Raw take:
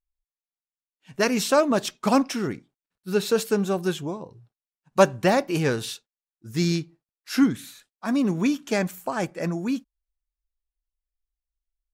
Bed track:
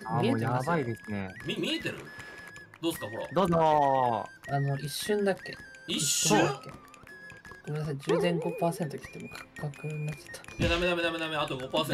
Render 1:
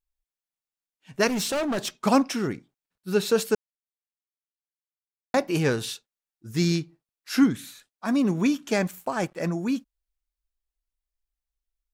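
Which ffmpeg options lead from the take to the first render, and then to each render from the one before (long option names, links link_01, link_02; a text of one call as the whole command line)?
ffmpeg -i in.wav -filter_complex "[0:a]asettb=1/sr,asplit=3[link_01][link_02][link_03];[link_01]atrim=end=1.274[link_04];[link_02]atrim=start=1.27:end=2.01,asetpts=PTS-STARTPTS,afade=type=in:duration=0.004:curve=qsin,afade=type=out:start_time=0.736:duration=0.004:curve=qsin,volume=24dB,asoftclip=hard,volume=-24dB[link_05];[link_03]atrim=start=2.006[link_06];[link_04][link_05]acrossfade=duration=0.004:curve1=hsin:curve2=qsin[link_07];[link_07][link_06]acrossfade=duration=0.004:curve1=qsin:curve2=hsin,asettb=1/sr,asplit=3[link_08][link_09][link_10];[link_08]atrim=end=8.744[link_11];[link_09]atrim=start=8.74:end=9.49,asetpts=PTS-STARTPTS,afade=type=in:duration=0.004:curve=qsin,afade=type=out:start_time=0.746:duration=0.004:curve=qsin,aeval=exprs='sgn(val(0))*max(abs(val(0))-0.00237,0)':channel_layout=same[link_12];[link_10]atrim=start=9.486[link_13];[link_11][link_12]acrossfade=duration=0.004:curve1=hsin:curve2=qsin[link_14];[link_14][link_13]acrossfade=duration=0.004:curve1=qsin:curve2=hsin,asplit=3[link_15][link_16][link_17];[link_15]atrim=end=3.55,asetpts=PTS-STARTPTS,afade=type=out:start_time=3.546:duration=0.004:curve=hsin[link_18];[link_16]atrim=start=3.55:end=5.34,asetpts=PTS-STARTPTS,volume=0[link_19];[link_17]atrim=start=5.34,asetpts=PTS-STARTPTS,afade=type=in:duration=0.004:curve=hsin[link_20];[link_18][link_19][link_20]concat=n=3:v=0:a=1" out.wav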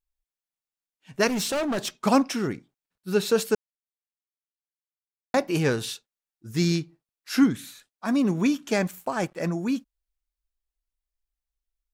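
ffmpeg -i in.wav -af anull out.wav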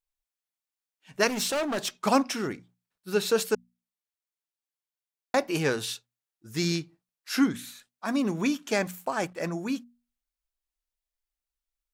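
ffmpeg -i in.wav -af "lowshelf=frequency=310:gain=-7,bandreject=frequency=60:width_type=h:width=6,bandreject=frequency=120:width_type=h:width=6,bandreject=frequency=180:width_type=h:width=6,bandreject=frequency=240:width_type=h:width=6" out.wav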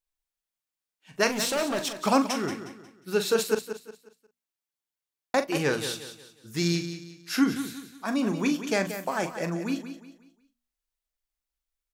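ffmpeg -i in.wav -filter_complex "[0:a]asplit=2[link_01][link_02];[link_02]adelay=41,volume=-10dB[link_03];[link_01][link_03]amix=inputs=2:normalize=0,asplit=2[link_04][link_05];[link_05]aecho=0:1:180|360|540|720:0.299|0.104|0.0366|0.0128[link_06];[link_04][link_06]amix=inputs=2:normalize=0" out.wav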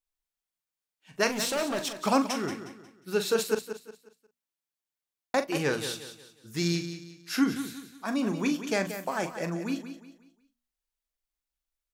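ffmpeg -i in.wav -af "volume=-2dB" out.wav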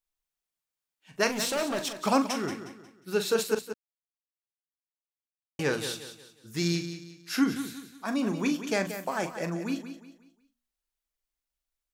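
ffmpeg -i in.wav -filter_complex "[0:a]asplit=3[link_01][link_02][link_03];[link_01]atrim=end=3.74,asetpts=PTS-STARTPTS,afade=type=out:start_time=3.736:duration=0.004:curve=hsin[link_04];[link_02]atrim=start=3.74:end=5.59,asetpts=PTS-STARTPTS,volume=0[link_05];[link_03]atrim=start=5.59,asetpts=PTS-STARTPTS,afade=type=in:duration=0.004:curve=hsin[link_06];[link_04][link_05][link_06]concat=n=3:v=0:a=1" out.wav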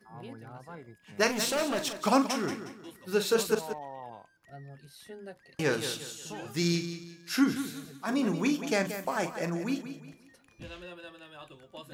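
ffmpeg -i in.wav -i bed.wav -filter_complex "[1:a]volume=-17.5dB[link_01];[0:a][link_01]amix=inputs=2:normalize=0" out.wav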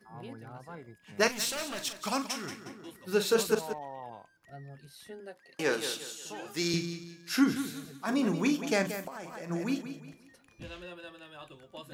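ffmpeg -i in.wav -filter_complex "[0:a]asettb=1/sr,asplit=3[link_01][link_02][link_03];[link_01]atrim=end=1.284[link_04];[link_02]atrim=start=1.28:end=2.66,asetpts=PTS-STARTPTS,afade=type=in:duration=0.004:curve=qsin,afade=type=out:start_time=1.376:duration=0.004:curve=qsin,equalizer=frequency=410:width=0.34:gain=-10.5[link_05];[link_03]atrim=start=2.656[link_06];[link_04][link_05]acrossfade=duration=0.004:curve1=hsin:curve2=qsin[link_07];[link_07][link_06]acrossfade=duration=0.004:curve1=qsin:curve2=hsin,asettb=1/sr,asplit=3[link_08][link_09][link_10];[link_08]atrim=end=5.204[link_11];[link_09]atrim=start=5.2:end=6.74,asetpts=PTS-STARTPTS,afade=type=in:duration=0.004:curve=qsin,afade=type=out:start_time=1.536:duration=0.004:curve=qsin,highpass=280[link_12];[link_10]atrim=start=6.736[link_13];[link_11][link_12]acrossfade=duration=0.004:curve1=hsin:curve2=qsin[link_14];[link_14][link_13]acrossfade=duration=0.004:curve1=qsin:curve2=hsin,asplit=3[link_15][link_16][link_17];[link_15]afade=type=out:start_time=9.06:duration=0.02[link_18];[link_16]acompressor=threshold=-38dB:ratio=8:attack=3.2:release=140:knee=1:detection=peak,afade=type=in:start_time=9.06:duration=0.02,afade=type=out:start_time=9.49:duration=0.02[link_19];[link_17]afade=type=in:start_time=9.49:duration=0.02[link_20];[link_18][link_19][link_20]amix=inputs=3:normalize=0" out.wav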